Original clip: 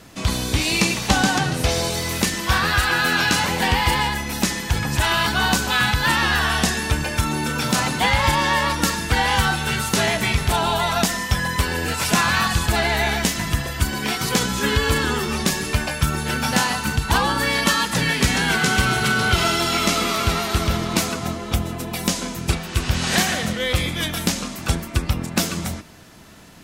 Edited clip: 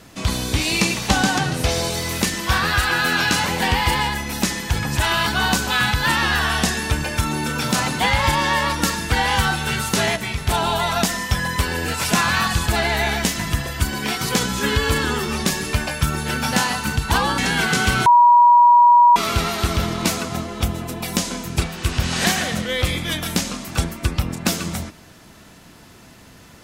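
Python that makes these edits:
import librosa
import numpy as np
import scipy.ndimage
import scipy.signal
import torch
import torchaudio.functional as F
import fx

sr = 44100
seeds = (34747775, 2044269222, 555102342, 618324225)

y = fx.edit(x, sr, fx.clip_gain(start_s=10.16, length_s=0.31, db=-5.5),
    fx.cut(start_s=17.38, length_s=0.91),
    fx.bleep(start_s=18.97, length_s=1.1, hz=962.0, db=-7.5), tone=tone)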